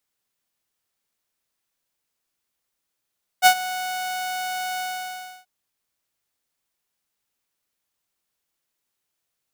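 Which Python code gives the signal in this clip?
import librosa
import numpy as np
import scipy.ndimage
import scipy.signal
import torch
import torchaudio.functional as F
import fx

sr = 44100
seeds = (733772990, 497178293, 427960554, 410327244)

y = fx.adsr_tone(sr, wave='saw', hz=738.0, attack_ms=42.0, decay_ms=78.0, sustain_db=-17.5, held_s=1.38, release_ms=653.0, level_db=-6.0)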